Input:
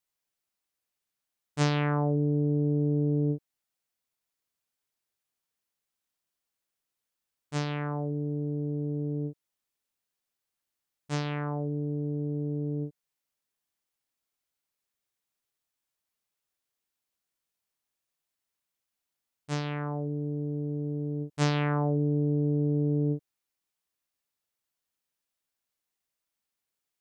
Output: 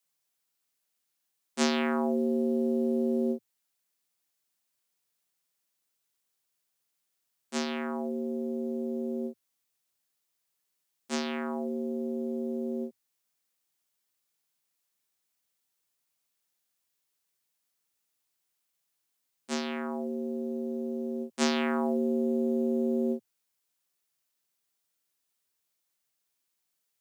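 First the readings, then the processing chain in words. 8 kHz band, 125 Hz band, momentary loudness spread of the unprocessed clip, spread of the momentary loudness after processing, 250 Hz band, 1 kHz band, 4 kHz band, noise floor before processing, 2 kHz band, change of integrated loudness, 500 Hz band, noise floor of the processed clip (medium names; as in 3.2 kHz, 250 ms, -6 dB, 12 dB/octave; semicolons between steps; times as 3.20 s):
no reading, under -25 dB, 8 LU, 8 LU, +1.0 dB, -0.5 dB, +3.5 dB, under -85 dBFS, +0.5 dB, -1.0 dB, +3.0 dB, -80 dBFS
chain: treble shelf 3.2 kHz +8 dB; companded quantiser 8-bit; frequency shift +89 Hz; trim -1.5 dB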